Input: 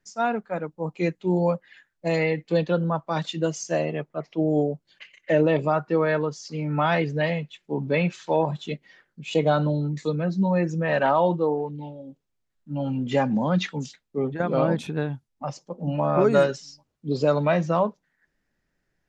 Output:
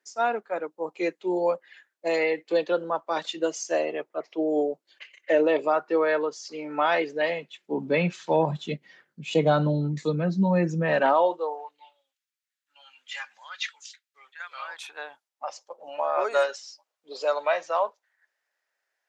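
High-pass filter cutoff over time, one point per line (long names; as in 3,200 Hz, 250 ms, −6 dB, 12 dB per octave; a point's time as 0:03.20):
high-pass filter 24 dB per octave
0:07.18 320 Hz
0:08.46 120 Hz
0:10.83 120 Hz
0:11.29 410 Hz
0:12.04 1,500 Hz
0:14.52 1,500 Hz
0:15.14 590 Hz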